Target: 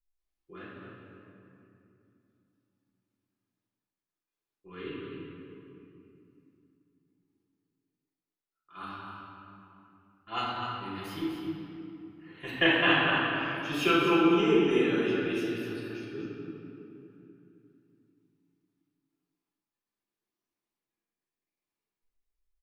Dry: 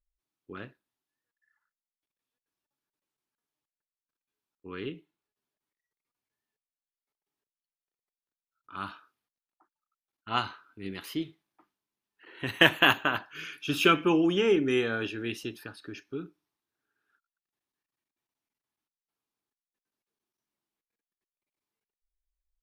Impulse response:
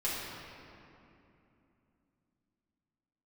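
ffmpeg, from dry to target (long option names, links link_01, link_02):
-filter_complex "[0:a]asettb=1/sr,asplit=3[link_01][link_02][link_03];[link_01]atrim=end=12.504[link_04];[link_02]atrim=start=12.5:end=13.55,asetpts=PTS-STARTPTS,afade=type=in:duration=0.004:curve=qsin,afade=type=out:start_time=1.046:duration=0.004:curve=qsin,lowpass=frequency=4300:width=0.5412,lowpass=frequency=4300:width=1.3066[link_05];[link_03]atrim=start=13.546[link_06];[link_04][link_05]acrossfade=duration=0.004:curve1=hsin:curve2=qsin[link_07];[link_07][link_06]acrossfade=duration=0.004:curve1=qsin:curve2=hsin,aecho=1:1:250:0.355[link_08];[1:a]atrim=start_sample=2205[link_09];[link_08][link_09]afir=irnorm=-1:irlink=0,volume=-7.5dB"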